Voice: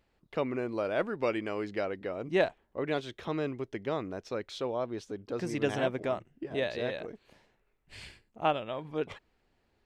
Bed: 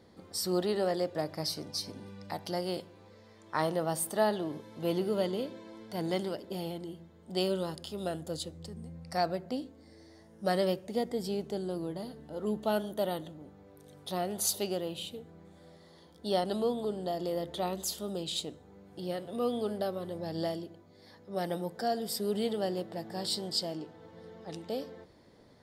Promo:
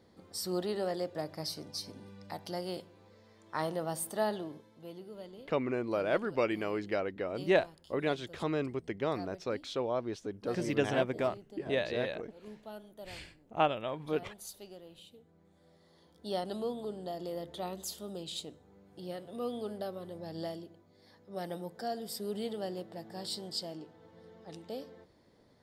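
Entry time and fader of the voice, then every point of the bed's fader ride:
5.15 s, 0.0 dB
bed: 4.37 s -4 dB
4.92 s -16.5 dB
14.82 s -16.5 dB
16.13 s -5.5 dB

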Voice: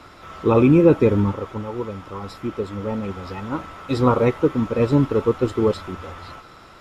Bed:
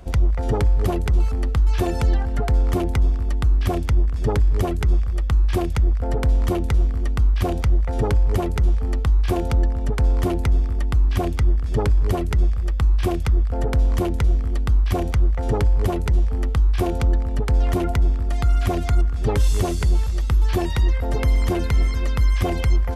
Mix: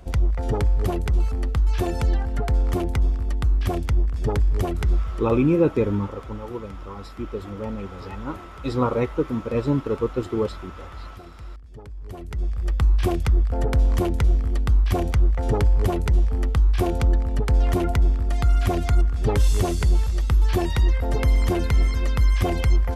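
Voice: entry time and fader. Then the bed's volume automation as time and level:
4.75 s, -5.0 dB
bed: 5 s -2.5 dB
5.52 s -21 dB
11.91 s -21 dB
12.71 s -0.5 dB

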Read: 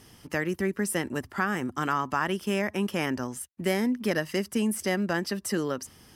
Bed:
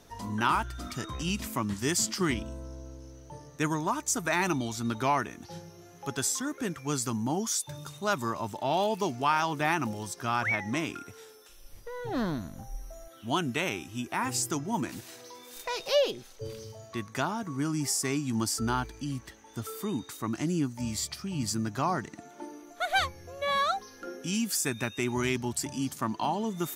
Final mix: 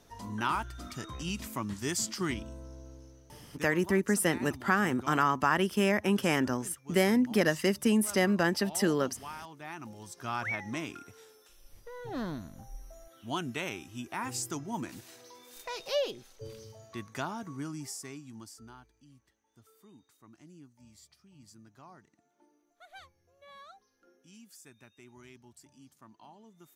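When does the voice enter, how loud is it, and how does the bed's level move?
3.30 s, +1.0 dB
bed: 2.99 s -4.5 dB
3.94 s -17.5 dB
9.59 s -17.5 dB
10.29 s -5.5 dB
17.46 s -5.5 dB
18.87 s -24.5 dB

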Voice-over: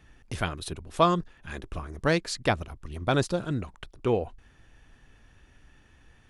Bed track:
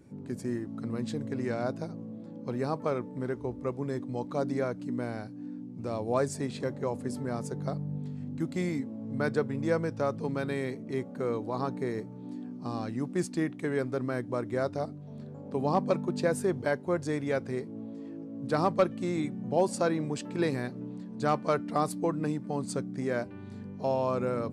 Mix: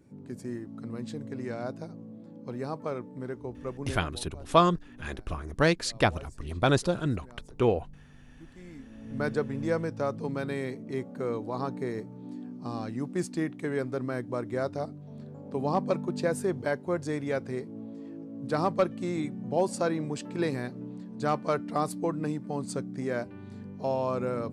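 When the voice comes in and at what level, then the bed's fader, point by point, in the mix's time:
3.55 s, +1.0 dB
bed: 3.91 s -3.5 dB
4.29 s -19 dB
8.59 s -19 dB
9.2 s -0.5 dB

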